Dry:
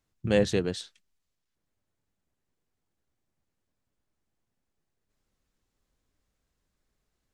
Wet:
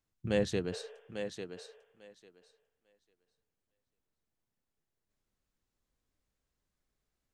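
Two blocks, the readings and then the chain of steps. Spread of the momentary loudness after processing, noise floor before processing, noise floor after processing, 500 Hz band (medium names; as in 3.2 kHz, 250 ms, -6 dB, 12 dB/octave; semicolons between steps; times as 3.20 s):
16 LU, -82 dBFS, under -85 dBFS, -6.0 dB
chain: spectral replace 0.75–1.56 s, 400–3600 Hz both; thinning echo 847 ms, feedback 16%, high-pass 280 Hz, level -7 dB; trim -6.5 dB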